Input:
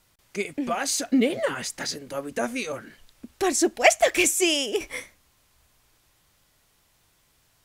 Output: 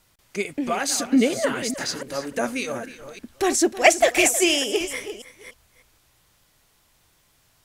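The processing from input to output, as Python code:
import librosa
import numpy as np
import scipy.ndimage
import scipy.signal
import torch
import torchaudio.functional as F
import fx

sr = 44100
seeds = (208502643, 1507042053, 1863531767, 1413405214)

y = fx.reverse_delay(x, sr, ms=290, wet_db=-11.0)
y = y + 10.0 ** (-15.5 / 20.0) * np.pad(y, (int(316 * sr / 1000.0), 0))[:len(y)]
y = y * librosa.db_to_amplitude(2.0)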